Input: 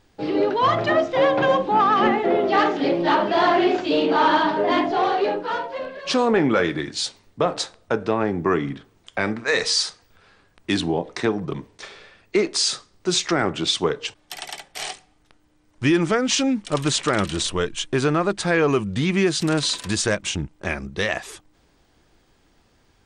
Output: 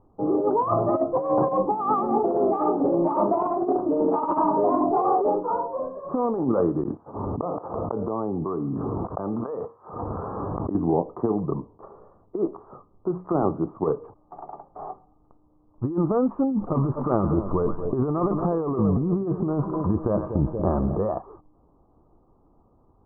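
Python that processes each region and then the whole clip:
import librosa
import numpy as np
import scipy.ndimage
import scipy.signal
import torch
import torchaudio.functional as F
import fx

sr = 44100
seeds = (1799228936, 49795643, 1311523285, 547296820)

y = fx.chain(x, sr, fx.highpass(hz=75.0, slope=12),
    fx.gate_flip(shuts_db=-21.0, range_db=-30),
    fx.env_flatten(amount_pct=100), at=(6.83, 10.75))
y = fx.chain(y, sr, fx.air_absorb(metres=280.0),
    fx.hum_notches(base_hz=60, count=5), at=(12.56, 13.71))
y = fx.chain(y, sr, fx.echo_split(split_hz=700.0, low_ms=236, high_ms=113, feedback_pct=52, wet_db=-16.0),
    fx.env_flatten(amount_pct=50), at=(16.51, 20.98))
y = scipy.signal.sosfilt(scipy.signal.cheby1(6, 1.0, 1200.0, 'lowpass', fs=sr, output='sos'), y)
y = fx.over_compress(y, sr, threshold_db=-21.0, ratio=-0.5)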